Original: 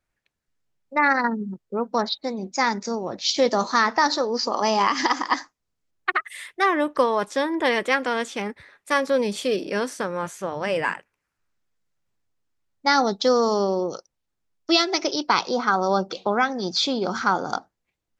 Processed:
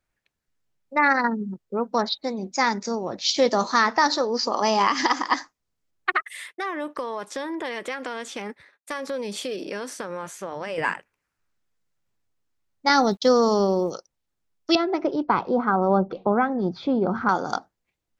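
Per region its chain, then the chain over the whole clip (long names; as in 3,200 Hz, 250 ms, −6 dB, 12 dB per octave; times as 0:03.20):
0:06.22–0:10.78: high-pass filter 180 Hz 6 dB per octave + downward compressor 4 to 1, threshold −27 dBFS + downward expander −45 dBFS
0:12.89–0:13.91: low-shelf EQ 150 Hz +10.5 dB + centre clipping without the shift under −47.5 dBFS + downward expander −24 dBFS
0:14.75–0:17.29: low-pass filter 1,300 Hz + low-shelf EQ 220 Hz +9.5 dB
whole clip: no processing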